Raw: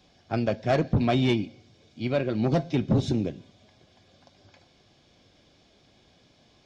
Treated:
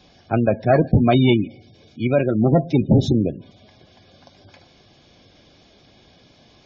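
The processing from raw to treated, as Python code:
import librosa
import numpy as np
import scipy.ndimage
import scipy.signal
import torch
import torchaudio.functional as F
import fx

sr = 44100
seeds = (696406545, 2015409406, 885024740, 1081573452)

y = fx.spec_gate(x, sr, threshold_db=-25, keep='strong')
y = F.gain(torch.from_numpy(y), 8.0).numpy()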